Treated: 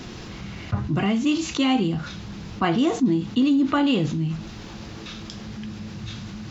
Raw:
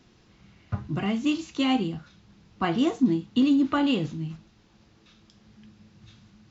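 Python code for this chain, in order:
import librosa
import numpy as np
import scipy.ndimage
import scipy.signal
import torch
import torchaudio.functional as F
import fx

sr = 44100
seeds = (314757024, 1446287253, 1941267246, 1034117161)

y = fx.env_flatten(x, sr, amount_pct=50)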